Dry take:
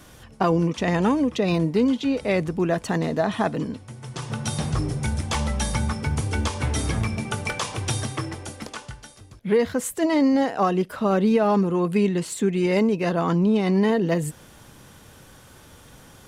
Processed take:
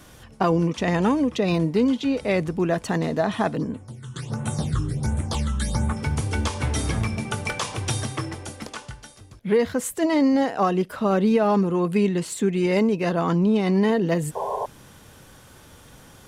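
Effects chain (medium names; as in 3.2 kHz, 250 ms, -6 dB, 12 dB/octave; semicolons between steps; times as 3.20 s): 3.57–5.97 s: phase shifter stages 8, 1.4 Hz, lowest notch 620–5000 Hz; 14.35–14.66 s: painted sound noise 390–1100 Hz -27 dBFS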